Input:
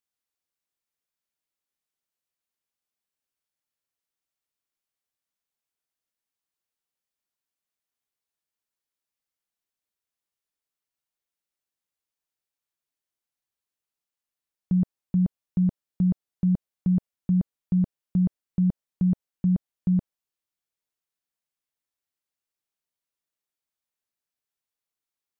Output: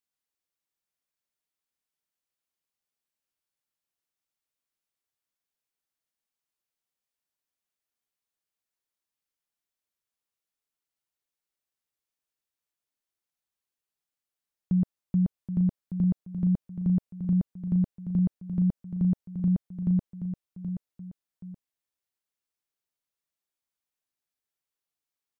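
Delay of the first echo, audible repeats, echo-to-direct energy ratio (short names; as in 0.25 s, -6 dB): 0.776 s, 2, -8.5 dB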